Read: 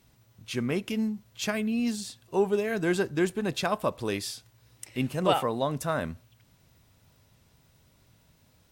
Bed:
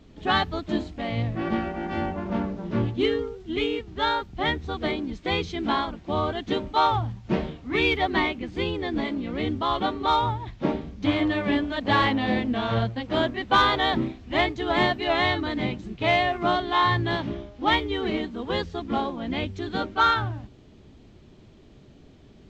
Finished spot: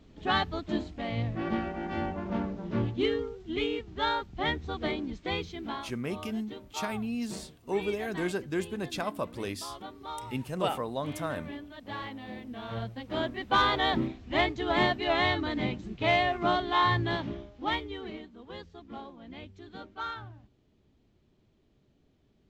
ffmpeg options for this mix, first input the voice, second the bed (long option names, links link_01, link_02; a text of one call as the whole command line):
ffmpeg -i stem1.wav -i stem2.wav -filter_complex "[0:a]adelay=5350,volume=-5.5dB[link_01];[1:a]volume=9.5dB,afade=type=out:start_time=5.11:duration=0.83:silence=0.223872,afade=type=in:start_time=12.4:duration=1.49:silence=0.199526,afade=type=out:start_time=16.96:duration=1.29:silence=0.223872[link_02];[link_01][link_02]amix=inputs=2:normalize=0" out.wav